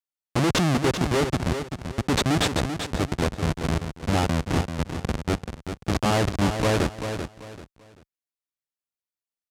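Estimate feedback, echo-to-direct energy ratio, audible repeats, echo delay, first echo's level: 28%, −7.5 dB, 3, 388 ms, −8.0 dB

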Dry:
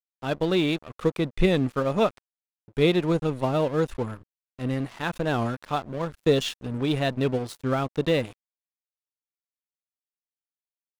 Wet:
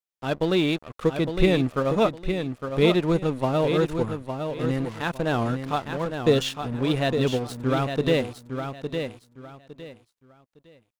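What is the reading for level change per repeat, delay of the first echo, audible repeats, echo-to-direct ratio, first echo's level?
−12.0 dB, 859 ms, 3, −6.5 dB, −7.0 dB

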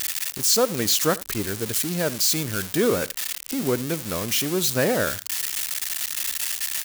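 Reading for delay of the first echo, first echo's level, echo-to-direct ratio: 79 ms, −20.0 dB, −20.0 dB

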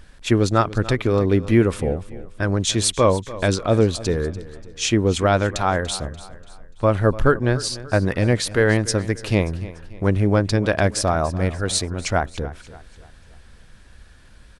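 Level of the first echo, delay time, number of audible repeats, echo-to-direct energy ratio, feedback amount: −17.0 dB, 291 ms, 3, −16.0 dB, 42%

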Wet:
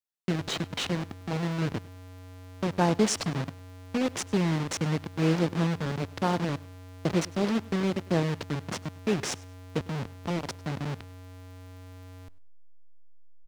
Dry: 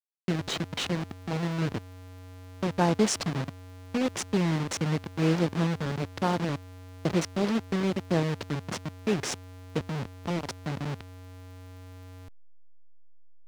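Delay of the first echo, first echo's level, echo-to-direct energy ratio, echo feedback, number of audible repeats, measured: 101 ms, −22.5 dB, −22.5 dB, 24%, 2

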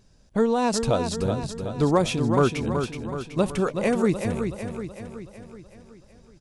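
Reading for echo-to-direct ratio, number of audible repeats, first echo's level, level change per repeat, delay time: −5.5 dB, 6, −7.0 dB, −5.5 dB, 375 ms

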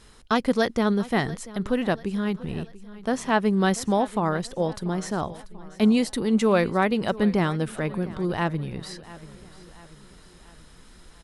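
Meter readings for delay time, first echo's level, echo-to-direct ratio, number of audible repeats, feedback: 688 ms, −18.5 dB, −17.5 dB, 3, 49%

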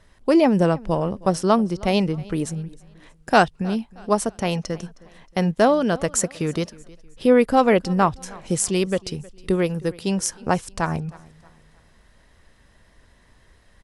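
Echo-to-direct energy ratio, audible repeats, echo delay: −22.0 dB, 2, 314 ms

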